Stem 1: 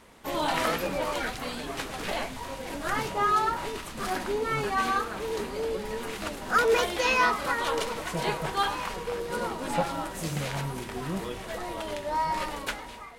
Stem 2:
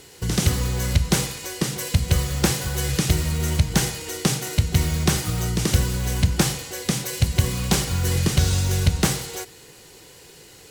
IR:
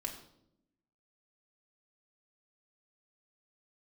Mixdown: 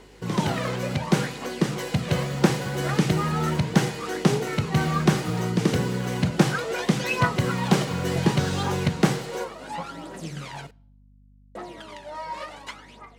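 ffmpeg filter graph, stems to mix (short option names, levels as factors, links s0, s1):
-filter_complex "[0:a]lowpass=7500,aphaser=in_gain=1:out_gain=1:delay=2:decay=0.63:speed=0.69:type=triangular,volume=0.447,asplit=3[s0][s1][s2];[s0]atrim=end=10.67,asetpts=PTS-STARTPTS,afade=t=out:st=10.666:d=0.004:c=hsin[s3];[s1]atrim=start=10.67:end=11.55,asetpts=PTS-STARTPTS,volume=0[s4];[s2]atrim=start=11.55,asetpts=PTS-STARTPTS,afade=t=in:d=0.004:c=hsin[s5];[s3][s4][s5]concat=n=3:v=0:a=1,asplit=2[s6][s7];[s7]volume=0.126[s8];[1:a]lowpass=f=1400:p=1,dynaudnorm=f=110:g=21:m=1.58,volume=1[s9];[2:a]atrim=start_sample=2205[s10];[s8][s10]afir=irnorm=-1:irlink=0[s11];[s6][s9][s11]amix=inputs=3:normalize=0,highpass=f=140:w=0.5412,highpass=f=140:w=1.3066,aeval=exprs='val(0)+0.00224*(sin(2*PI*50*n/s)+sin(2*PI*2*50*n/s)/2+sin(2*PI*3*50*n/s)/3+sin(2*PI*4*50*n/s)/4+sin(2*PI*5*50*n/s)/5)':c=same"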